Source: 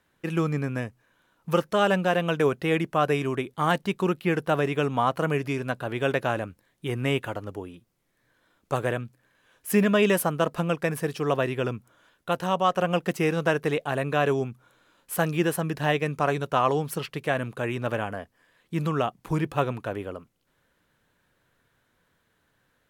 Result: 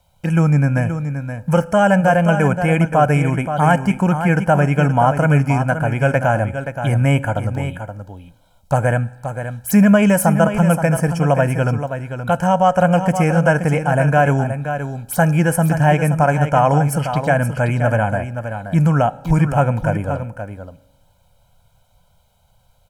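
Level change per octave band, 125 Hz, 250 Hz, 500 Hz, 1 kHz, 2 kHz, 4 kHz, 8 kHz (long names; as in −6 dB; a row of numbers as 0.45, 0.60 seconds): +15.0, +11.0, +7.5, +10.0, +8.5, 0.0, +9.5 decibels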